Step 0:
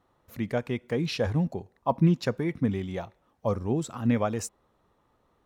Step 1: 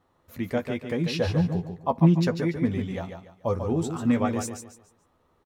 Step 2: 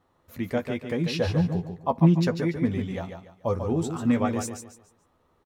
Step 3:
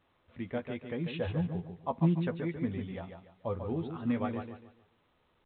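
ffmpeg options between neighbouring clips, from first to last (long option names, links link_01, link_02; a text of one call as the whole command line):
ffmpeg -i in.wav -filter_complex "[0:a]asplit=2[link_01][link_02];[link_02]adelay=12,volume=-6.5dB[link_03];[link_01][link_03]amix=inputs=2:normalize=0,aecho=1:1:144|288|432|576:0.447|0.138|0.0429|0.0133" out.wav
ffmpeg -i in.wav -af anull out.wav
ffmpeg -i in.wav -af "volume=-8.5dB" -ar 8000 -c:a pcm_alaw out.wav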